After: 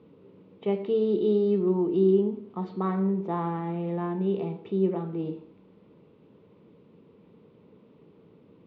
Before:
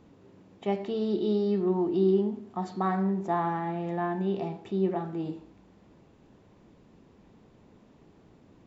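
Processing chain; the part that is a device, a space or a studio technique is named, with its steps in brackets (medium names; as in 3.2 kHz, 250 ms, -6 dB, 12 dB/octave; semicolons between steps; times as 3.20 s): guitar cabinet (cabinet simulation 110–3600 Hz, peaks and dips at 170 Hz +4 dB, 460 Hz +9 dB, 730 Hz -9 dB, 1.7 kHz -9 dB)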